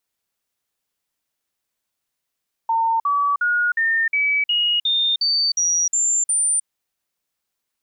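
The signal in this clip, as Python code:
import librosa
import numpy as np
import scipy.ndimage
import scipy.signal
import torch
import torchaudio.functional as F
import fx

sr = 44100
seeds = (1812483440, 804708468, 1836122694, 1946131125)

y = fx.stepped_sweep(sr, from_hz=908.0, direction='up', per_octave=3, tones=11, dwell_s=0.31, gap_s=0.05, level_db=-16.0)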